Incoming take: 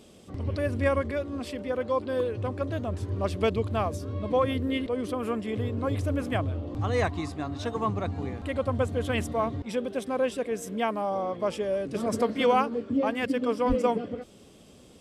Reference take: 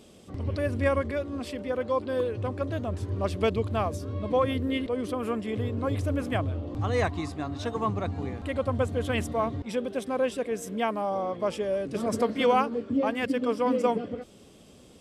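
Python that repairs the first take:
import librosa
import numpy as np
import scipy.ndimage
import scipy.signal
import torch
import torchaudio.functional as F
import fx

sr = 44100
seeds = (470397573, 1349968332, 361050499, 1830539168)

y = fx.highpass(x, sr, hz=140.0, slope=24, at=(13.68, 13.8), fade=0.02)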